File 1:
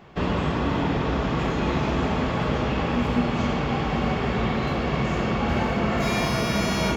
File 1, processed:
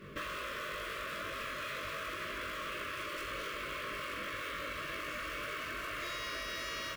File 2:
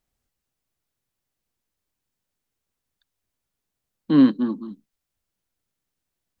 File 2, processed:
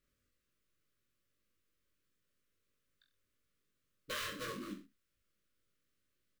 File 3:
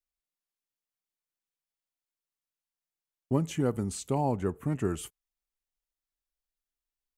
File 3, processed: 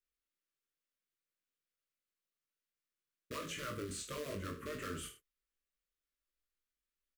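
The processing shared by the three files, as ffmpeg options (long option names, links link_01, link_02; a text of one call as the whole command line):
ffmpeg -i in.wav -filter_complex "[0:a]acrusher=bits=4:mode=log:mix=0:aa=0.000001,asuperstop=centerf=810:order=8:qfactor=1.7,bass=frequency=250:gain=-3,treble=frequency=4000:gain=-6,afftfilt=real='re*lt(hypot(re,im),0.126)':imag='im*lt(hypot(re,im),0.126)':win_size=1024:overlap=0.75,asplit=2[link_01][link_02];[link_02]aecho=0:1:20|42|66.2|92.82|122.1:0.631|0.398|0.251|0.158|0.1[link_03];[link_01][link_03]amix=inputs=2:normalize=0,acompressor=threshold=-37dB:ratio=5,volume=-1dB" out.wav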